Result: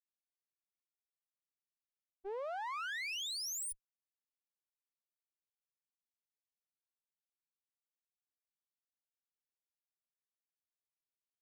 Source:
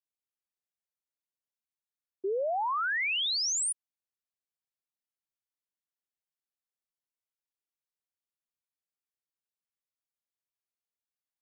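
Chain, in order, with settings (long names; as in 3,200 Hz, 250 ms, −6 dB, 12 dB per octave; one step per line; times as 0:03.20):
one-sided soft clipper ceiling −44 dBFS
downward expander −28 dBFS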